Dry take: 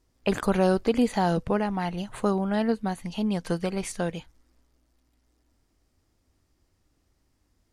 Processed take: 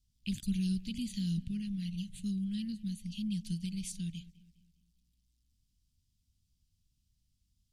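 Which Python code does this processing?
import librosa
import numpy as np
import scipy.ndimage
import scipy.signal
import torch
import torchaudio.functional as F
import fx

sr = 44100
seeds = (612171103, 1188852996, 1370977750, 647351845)

y = scipy.signal.sosfilt(scipy.signal.ellip(3, 1.0, 70, [190.0, 3100.0], 'bandstop', fs=sr, output='sos'), x)
y = fx.echo_wet_lowpass(y, sr, ms=204, feedback_pct=43, hz=2700.0, wet_db=-18.5)
y = F.gain(torch.from_numpy(y), -5.0).numpy()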